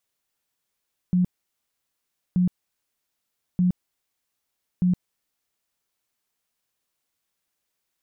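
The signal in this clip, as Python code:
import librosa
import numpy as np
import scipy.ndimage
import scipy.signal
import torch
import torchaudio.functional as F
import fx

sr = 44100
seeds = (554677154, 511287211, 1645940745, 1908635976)

y = fx.tone_burst(sr, hz=180.0, cycles=21, every_s=1.23, bursts=4, level_db=-16.5)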